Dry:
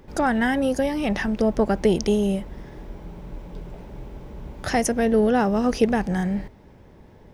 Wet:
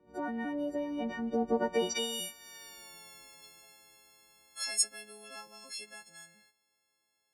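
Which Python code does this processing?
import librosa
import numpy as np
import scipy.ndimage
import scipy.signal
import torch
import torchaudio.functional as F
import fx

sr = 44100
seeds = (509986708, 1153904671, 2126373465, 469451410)

y = fx.freq_snap(x, sr, grid_st=4)
y = fx.doppler_pass(y, sr, speed_mps=16, closest_m=6.0, pass_at_s=2.85)
y = fx.filter_sweep_bandpass(y, sr, from_hz=370.0, to_hz=7500.0, start_s=1.54, end_s=2.31, q=0.74)
y = y * librosa.db_to_amplitude(4.5)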